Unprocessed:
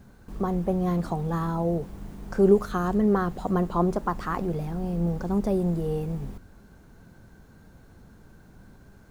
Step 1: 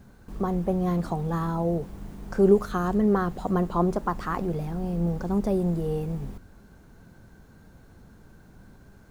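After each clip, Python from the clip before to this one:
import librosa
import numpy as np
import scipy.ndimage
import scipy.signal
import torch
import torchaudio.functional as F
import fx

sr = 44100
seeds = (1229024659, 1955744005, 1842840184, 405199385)

y = x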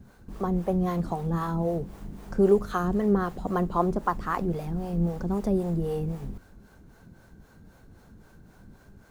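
y = fx.harmonic_tremolo(x, sr, hz=3.8, depth_pct=70, crossover_hz=410.0)
y = y * 10.0 ** (2.5 / 20.0)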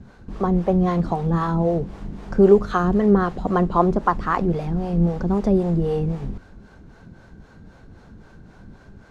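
y = scipy.signal.sosfilt(scipy.signal.butter(2, 5100.0, 'lowpass', fs=sr, output='sos'), x)
y = y * 10.0 ** (7.0 / 20.0)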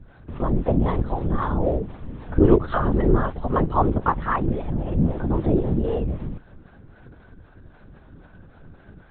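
y = fx.lpc_vocoder(x, sr, seeds[0], excitation='whisper', order=10)
y = y * 10.0 ** (-1.5 / 20.0)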